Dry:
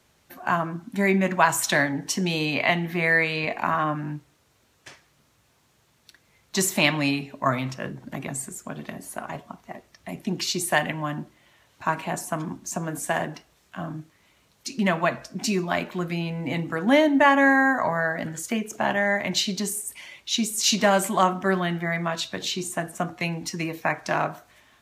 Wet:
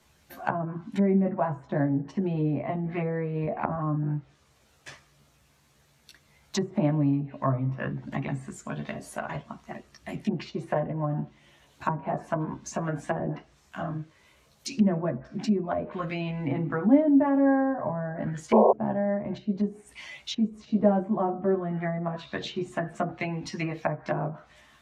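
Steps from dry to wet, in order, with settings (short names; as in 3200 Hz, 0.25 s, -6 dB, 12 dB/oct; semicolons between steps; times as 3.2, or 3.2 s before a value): chorus voices 4, 0.29 Hz, delay 14 ms, depth 1 ms; painted sound noise, 18.52–18.73, 360–1100 Hz -16 dBFS; treble ducked by the level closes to 530 Hz, closed at -24.5 dBFS; gain +3 dB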